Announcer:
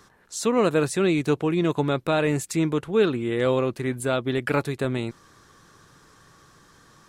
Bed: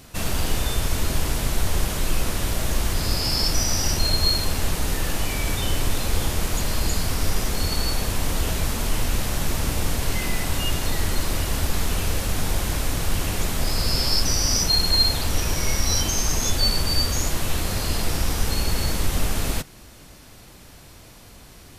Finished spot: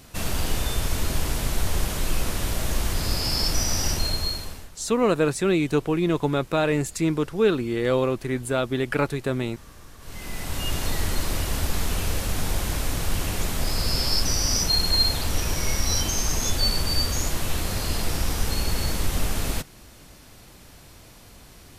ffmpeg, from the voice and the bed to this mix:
ffmpeg -i stem1.wav -i stem2.wav -filter_complex "[0:a]adelay=4450,volume=0dB[link_01];[1:a]volume=19.5dB,afade=type=out:start_time=3.88:duration=0.81:silence=0.0841395,afade=type=in:start_time=9.99:duration=0.82:silence=0.0841395[link_02];[link_01][link_02]amix=inputs=2:normalize=0" out.wav

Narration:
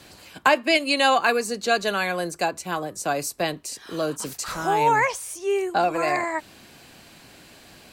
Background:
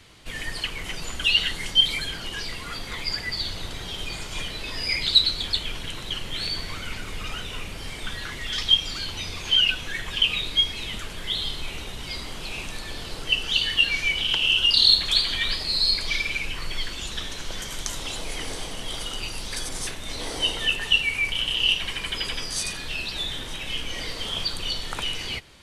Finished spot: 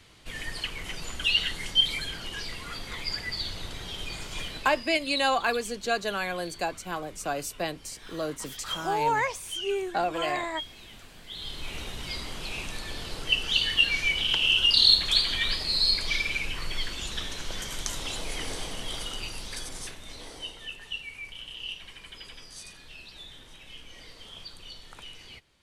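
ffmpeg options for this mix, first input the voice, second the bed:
ffmpeg -i stem1.wav -i stem2.wav -filter_complex "[0:a]adelay=4200,volume=-6dB[link_01];[1:a]volume=10.5dB,afade=type=out:start_time=4.45:duration=0.44:silence=0.237137,afade=type=in:start_time=11.28:duration=0.53:silence=0.188365,afade=type=out:start_time=18.75:duration=1.8:silence=0.199526[link_02];[link_01][link_02]amix=inputs=2:normalize=0" out.wav

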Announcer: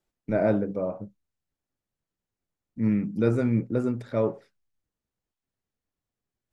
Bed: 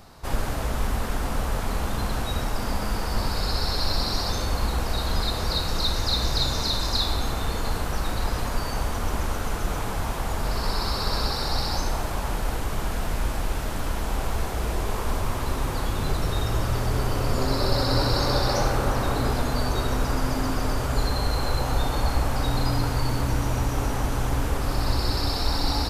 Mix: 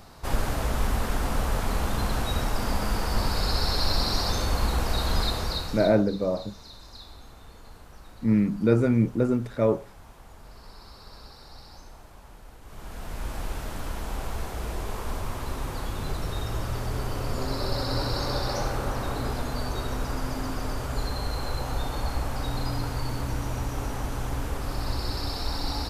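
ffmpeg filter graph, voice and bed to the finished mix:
ffmpeg -i stem1.wav -i stem2.wav -filter_complex "[0:a]adelay=5450,volume=2.5dB[link_01];[1:a]volume=15.5dB,afade=type=out:start_time=5.22:duration=0.75:silence=0.0891251,afade=type=in:start_time=12.61:duration=0.81:silence=0.16788[link_02];[link_01][link_02]amix=inputs=2:normalize=0" out.wav

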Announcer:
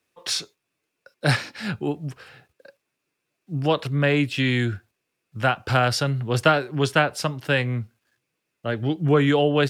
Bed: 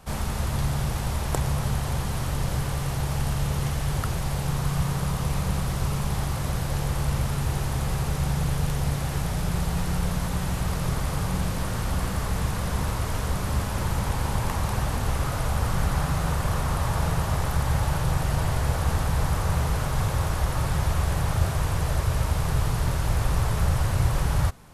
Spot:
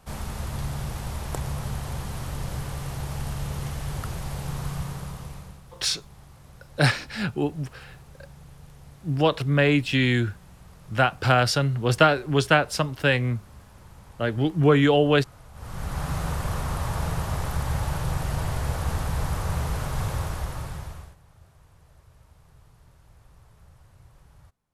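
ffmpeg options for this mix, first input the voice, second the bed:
ffmpeg -i stem1.wav -i stem2.wav -filter_complex "[0:a]adelay=5550,volume=0.5dB[link_01];[1:a]volume=14dB,afade=type=out:start_time=4.66:duration=0.94:silence=0.141254,afade=type=in:start_time=15.53:duration=0.6:silence=0.112202,afade=type=out:start_time=20.13:duration=1.03:silence=0.0421697[link_02];[link_01][link_02]amix=inputs=2:normalize=0" out.wav

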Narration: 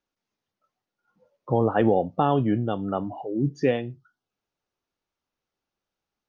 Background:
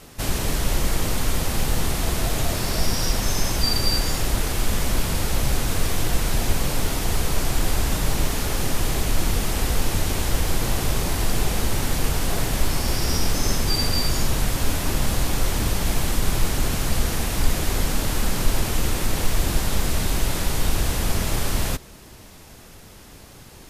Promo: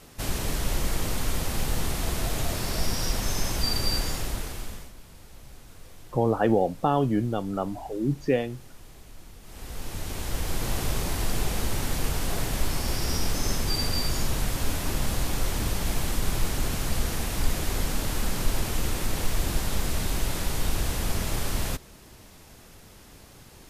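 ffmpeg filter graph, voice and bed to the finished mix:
ffmpeg -i stem1.wav -i stem2.wav -filter_complex "[0:a]adelay=4650,volume=-1.5dB[link_01];[1:a]volume=15.5dB,afade=type=out:start_time=3.99:duration=0.93:silence=0.0944061,afade=type=in:start_time=9.42:duration=1.35:silence=0.0944061[link_02];[link_01][link_02]amix=inputs=2:normalize=0" out.wav

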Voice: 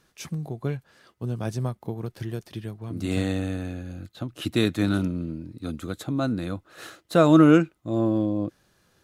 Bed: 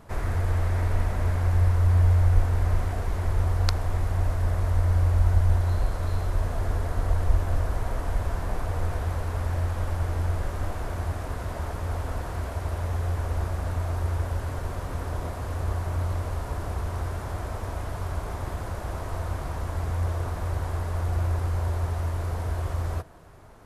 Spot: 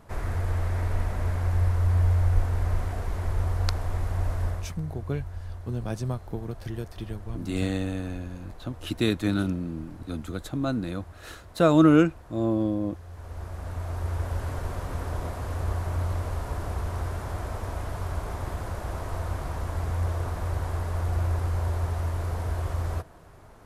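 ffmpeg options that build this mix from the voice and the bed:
ffmpeg -i stem1.wav -i stem2.wav -filter_complex "[0:a]adelay=4450,volume=-2dB[link_01];[1:a]volume=13.5dB,afade=type=out:start_time=4.44:duration=0.29:silence=0.199526,afade=type=in:start_time=13.08:duration=1.37:silence=0.158489[link_02];[link_01][link_02]amix=inputs=2:normalize=0" out.wav

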